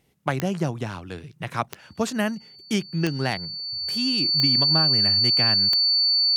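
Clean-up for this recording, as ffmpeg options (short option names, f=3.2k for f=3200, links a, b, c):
-af "adeclick=t=4,bandreject=f=4.5k:w=30"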